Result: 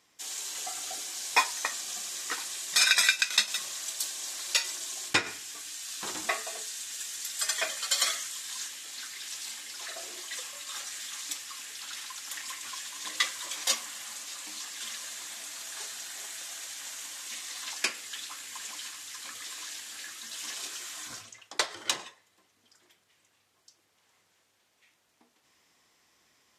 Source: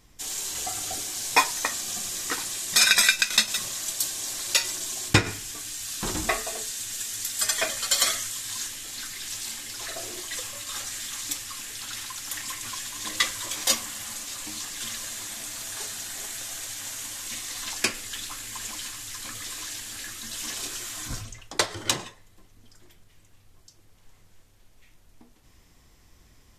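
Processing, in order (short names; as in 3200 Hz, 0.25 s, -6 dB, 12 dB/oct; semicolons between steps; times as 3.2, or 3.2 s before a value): weighting filter A; gain -4.5 dB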